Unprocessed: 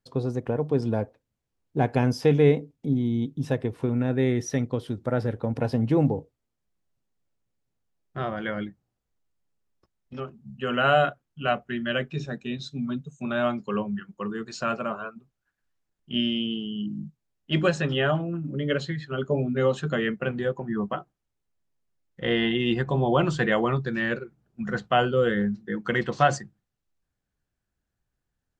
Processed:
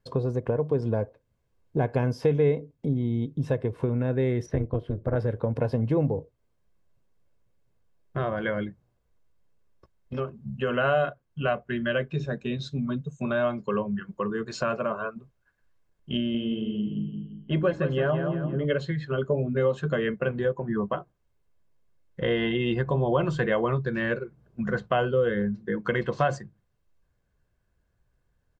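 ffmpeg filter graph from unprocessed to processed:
-filter_complex "[0:a]asettb=1/sr,asplit=3[a][b][c];[a]atrim=end=4.464[d];[b]atrim=start=4.46:end=5.16,asetpts=PTS-STARTPTS,afade=t=in:d=0.004:c=qsin,afade=t=out:st=0.696:d=0.004:c=qsin,bass=f=250:g=6,treble=f=4k:g=-14,tremolo=f=220:d=0.824[e];[c]atrim=start=5.156[f];[d][e]acrossfade=d=0.004:c1=hsin:c2=qsin[g];[g][f]acrossfade=d=0.004:c1=qsin:c2=hsin,asettb=1/sr,asplit=3[h][i][j];[h]atrim=end=16.174[k];[i]atrim=start=16.17:end=18.65,asetpts=PTS-STARTPTS,afade=t=in:d=0.004:c=qsin,afade=t=out:st=2.476:d=0.004:c=qsin,lowpass=f=1.6k:p=1,aecho=1:1:170|340|510|680:0.398|0.155|0.0606|0.0236,atrim=end_sample=109368[l];[j]atrim=start=18.646[m];[k][l]acrossfade=d=0.004:c1=hsin:c2=qsin[n];[n][m]acrossfade=d=0.004:c1=qsin:c2=hsin,highshelf=f=2.7k:g=-10.5,aecho=1:1:1.9:0.37,acompressor=threshold=-39dB:ratio=2,volume=9dB"

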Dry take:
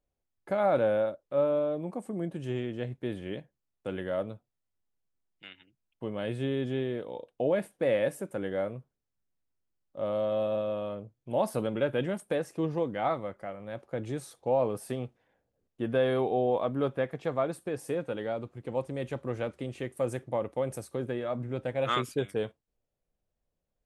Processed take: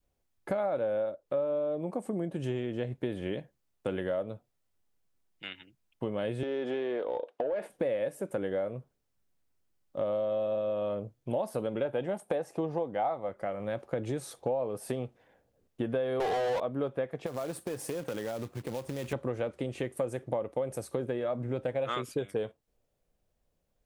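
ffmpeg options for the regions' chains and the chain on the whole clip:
-filter_complex "[0:a]asettb=1/sr,asplit=3[a][b][c];[a]atrim=end=6.434[d];[b]atrim=start=6.43:end=7.7,asetpts=PTS-STARTPTS,afade=t=in:d=0.004:c=qsin,afade=t=out:st=1.266:d=0.004:c=qsin,acompressor=threshold=-30dB:ratio=6:attack=3.2:release=140:knee=1:detection=peak,highpass=290,asplit=2[e][f];[f]highpass=f=720:p=1,volume=14dB,asoftclip=type=tanh:threshold=-23.5dB[g];[e][g]amix=inputs=2:normalize=0,lowpass=f=1.3k:p=1,volume=-6dB[h];[c]atrim=start=7.696[i];[d][h]acrossfade=d=0.004:c1=hsin:c2=qsin[j];[j][i]acrossfade=d=0.004:c1=qsin:c2=hsin,asettb=1/sr,asplit=3[k][l][m];[k]atrim=end=11.854[n];[l]atrim=start=11.85:end=13.29,asetpts=PTS-STARTPTS,afade=t=in:d=0.004:c=qsin,afade=t=out:st=1.436:d=0.004:c=qsin,highpass=49,equalizer=f=780:w=2.4:g=9.5[o];[m]atrim=start=13.286[p];[n][o]acrossfade=d=0.004:c1=hsin:c2=qsin[q];[q][p]acrossfade=d=0.004:c1=qsin:c2=hsin,asettb=1/sr,asplit=3[r][s][t];[r]atrim=end=16.204[u];[s]atrim=start=16.2:end=16.6,asetpts=PTS-STARTPTS,afade=t=in:d=0.004:c=qsin,afade=t=out:st=0.396:d=0.004:c=qsin,aemphasis=mode=production:type=riaa,asplit=2[v][w];[w]highpass=f=720:p=1,volume=31dB,asoftclip=type=tanh:threshold=-19.5dB[x];[v][x]amix=inputs=2:normalize=0,lowpass=f=4.1k:p=1,volume=-6dB[y];[t]atrim=start=16.596[z];[u][y]acrossfade=d=0.004:c1=hsin:c2=qsin[aa];[aa][z]acrossfade=d=0.004:c1=qsin:c2=hsin,asettb=1/sr,asplit=3[ab][ac][ad];[ab]atrim=end=17.264[ae];[ac]atrim=start=17.26:end=19.13,asetpts=PTS-STARTPTS,afade=t=in:d=0.004:c=qsin,afade=t=out:st=1.866:d=0.004:c=qsin,highpass=f=53:w=0.5412,highpass=f=53:w=1.3066,acompressor=threshold=-38dB:ratio=6:attack=3.2:release=140:knee=1:detection=peak,acrusher=bits=3:mode=log:mix=0:aa=0.000001[af];[ad]atrim=start=19.126[ag];[ae][af]acrossfade=d=0.004:c1=hsin:c2=qsin[ah];[ah][ag]acrossfade=d=0.004:c1=qsin:c2=hsin,adynamicequalizer=threshold=0.0141:dfrequency=540:dqfactor=1.2:tfrequency=540:tqfactor=1.2:attack=5:release=100:ratio=0.375:range=2.5:mode=boostabove:tftype=bell,acompressor=threshold=-36dB:ratio=6,volume=6.5dB"

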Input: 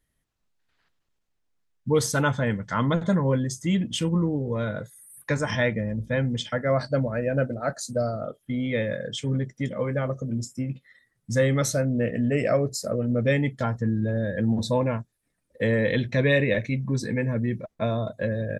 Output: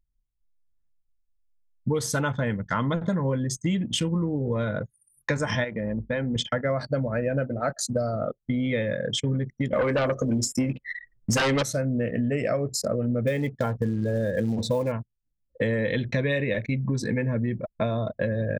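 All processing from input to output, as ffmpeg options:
-filter_complex "[0:a]asettb=1/sr,asplit=3[a][b][c];[a]atrim=end=5.644[d];[b]atrim=start=5.64:end=6.36,asetpts=PTS-STARTPTS,afade=t=in:d=0.004:c=qsin,afade=t=out:st=0.716:d=0.004:c=qsin,equalizer=f=110:t=o:w=1.4:g=-8.5,acompressor=threshold=-29dB:ratio=2.5:attack=3.2:release=140:knee=1:detection=peak[e];[c]atrim=start=6.356[f];[d][e]acrossfade=d=0.004:c1=hsin:c2=qsin[g];[g][f]acrossfade=d=0.004:c1=qsin:c2=hsin,asettb=1/sr,asplit=3[h][i][j];[h]atrim=end=9.734[k];[i]atrim=start=9.73:end=11.63,asetpts=PTS-STARTPTS,afade=t=in:d=0.004:c=qsin,afade=t=out:st=1.896:d=0.004:c=qsin,equalizer=f=140:t=o:w=1.5:g=-10.5,bandreject=f=3.6k:w=18,aeval=exprs='0.251*sin(PI/2*3.98*val(0)/0.251)':c=same[l];[j]atrim=start=11.626[m];[k][l]acrossfade=d=0.004:c1=hsin:c2=qsin[n];[n][m]acrossfade=d=0.004:c1=qsin:c2=hsin,asettb=1/sr,asplit=3[o][p][q];[o]atrim=end=13.274[r];[p]atrim=start=13.27:end=14.92,asetpts=PTS-STARTPTS,afade=t=in:d=0.004:c=qsin,afade=t=out:st=1.646:d=0.004:c=qsin,equalizer=f=470:w=2.6:g=6.5,acrusher=bits=7:mode=log:mix=0:aa=0.000001[s];[q]atrim=start=14.916[t];[r][s]acrossfade=d=0.004:c1=hsin:c2=qsin[u];[u][t]acrossfade=d=0.004:c1=qsin:c2=hsin,anlmdn=1,acompressor=threshold=-30dB:ratio=6,volume=7dB"

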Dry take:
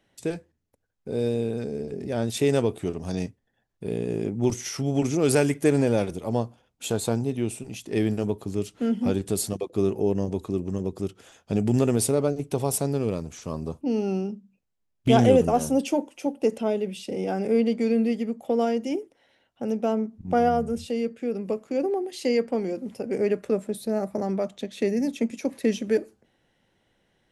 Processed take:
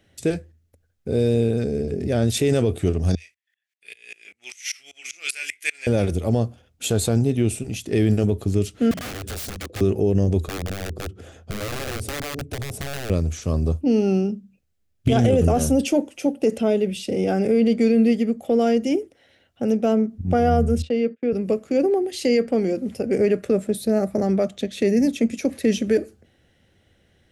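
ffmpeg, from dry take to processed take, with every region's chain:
-filter_complex "[0:a]asettb=1/sr,asplit=3[a][b][c];[a]atrim=end=3.154[d];[b]atrim=start=3.15:end=5.87,asetpts=PTS-STARTPTS,afade=t=in:d=0.004:c=qsin,afade=t=out:st=2.716:d=0.004:c=qsin,highpass=f=2.3k:t=q:w=3.2,asplit=2[e][f];[f]adelay=24,volume=-9.5dB[g];[e][g]amix=inputs=2:normalize=0,atrim=end_sample=119952,aeval=exprs='val(0)*pow(10,-25*if(lt(mod(-5.1*n/s,1),2*abs(-5.1)/1000),1-mod(-5.1*n/s,1)/(2*abs(-5.1)/1000),(mod(-5.1*n/s,1)-2*abs(-5.1)/1000)/(1-2*abs(-5.1)/1000))/20)':c=same[h];[c]atrim=start=5.866[i];[d][h]acrossfade=d=0.004:c1=hsin:c2=qsin[j];[j][i]acrossfade=d=0.004:c1=qsin:c2=hsin,asettb=1/sr,asplit=3[k][l][m];[k]atrim=end=8.914[n];[l]atrim=start=8.91:end=9.81,asetpts=PTS-STARTPTS,afade=t=in:d=0.004:c=qsin,afade=t=out:st=0.896:d=0.004:c=qsin,highshelf=f=10k:g=-11,acompressor=threshold=-29dB:ratio=16:attack=3.2:release=140:knee=1:detection=peak,aeval=exprs='(mod(44.7*val(0)+1,2)-1)/44.7':c=same[o];[m]atrim=start=9.806[p];[n][o]acrossfade=d=0.004:c1=hsin:c2=qsin[q];[q][p]acrossfade=d=0.004:c1=qsin:c2=hsin,asettb=1/sr,asplit=3[r][s][t];[r]atrim=end=10.474[u];[s]atrim=start=10.47:end=13.1,asetpts=PTS-STARTPTS,afade=t=in:d=0.004:c=qsin,afade=t=out:st=2.626:d=0.004:c=qsin,tiltshelf=f=1.3k:g=7.5,acompressor=threshold=-42dB:ratio=2:attack=3.2:release=140:knee=1:detection=peak,aeval=exprs='(mod(29.9*val(0)+1,2)-1)/29.9':c=same[v];[t]atrim=start=13.096[w];[u][v]acrossfade=d=0.004:c1=hsin:c2=qsin[x];[x][w]acrossfade=d=0.004:c1=qsin:c2=hsin,asettb=1/sr,asplit=3[y][z][aa];[y]atrim=end=20.824[ab];[z]atrim=start=20.82:end=21.33,asetpts=PTS-STARTPTS,afade=t=in:d=0.004:c=qsin,afade=t=out:st=0.506:d=0.004:c=qsin,agate=range=-29dB:threshold=-42dB:ratio=16:release=100:detection=peak,highpass=210,lowpass=3.3k[ac];[aa]atrim=start=21.326[ad];[ab][ac]acrossfade=d=0.004:c1=hsin:c2=qsin[ae];[ae][ad]acrossfade=d=0.004:c1=qsin:c2=hsin,equalizer=f=950:t=o:w=0.44:g=-10,alimiter=limit=-17dB:level=0:latency=1:release=19,equalizer=f=80:t=o:w=0.64:g=13.5,volume=6.5dB"

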